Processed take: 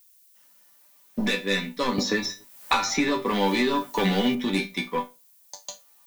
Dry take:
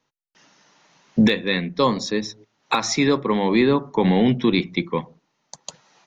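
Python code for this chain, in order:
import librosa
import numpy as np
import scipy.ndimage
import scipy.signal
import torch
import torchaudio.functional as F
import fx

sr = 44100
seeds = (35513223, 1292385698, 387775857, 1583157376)

y = fx.low_shelf(x, sr, hz=290.0, db=-8.5)
y = fx.leveller(y, sr, passes=2)
y = fx.resonator_bank(y, sr, root=55, chord='major', decay_s=0.22)
y = fx.dmg_noise_colour(y, sr, seeds[0], colour='violet', level_db=-65.0)
y = fx.band_squash(y, sr, depth_pct=100, at=(1.98, 4.35))
y = F.gain(torch.from_numpy(y), 7.5).numpy()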